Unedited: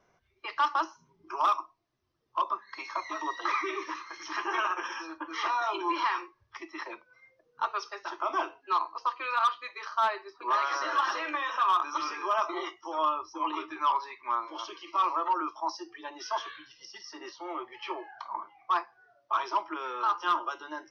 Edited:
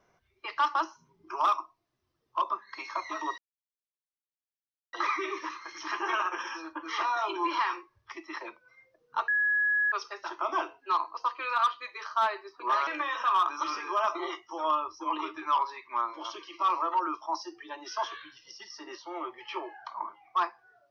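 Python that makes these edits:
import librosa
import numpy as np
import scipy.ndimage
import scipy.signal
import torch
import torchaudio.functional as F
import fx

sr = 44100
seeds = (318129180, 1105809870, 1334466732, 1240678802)

y = fx.edit(x, sr, fx.insert_silence(at_s=3.38, length_s=1.55),
    fx.insert_tone(at_s=7.73, length_s=0.64, hz=1680.0, db=-23.0),
    fx.cut(start_s=10.68, length_s=0.53), tone=tone)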